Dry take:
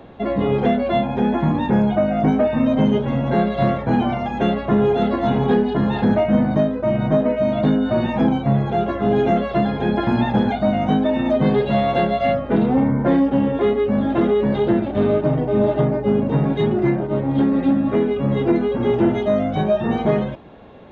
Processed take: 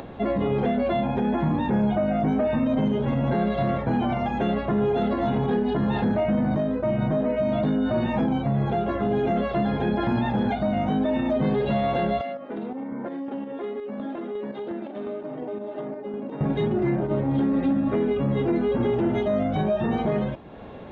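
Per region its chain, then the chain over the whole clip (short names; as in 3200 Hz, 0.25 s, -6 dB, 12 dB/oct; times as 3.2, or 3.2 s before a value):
12.21–16.41 HPF 220 Hz 24 dB/oct + chopper 2.8 Hz, depth 60%, duty 45% + compressor, threshold -27 dBFS
whole clip: limiter -14.5 dBFS; tone controls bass +1 dB, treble -4 dB; upward compressor, threshold -31 dBFS; gain -2 dB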